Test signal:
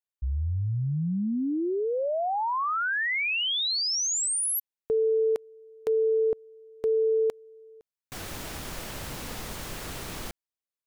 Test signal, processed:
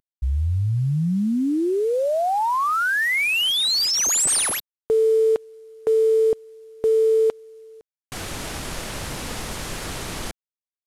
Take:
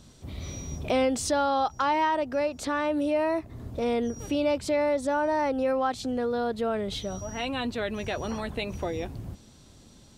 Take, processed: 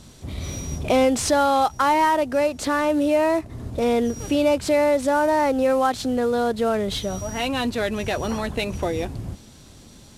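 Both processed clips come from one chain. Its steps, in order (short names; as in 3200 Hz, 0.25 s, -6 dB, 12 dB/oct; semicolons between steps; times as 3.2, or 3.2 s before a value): CVSD 64 kbps; gain +6.5 dB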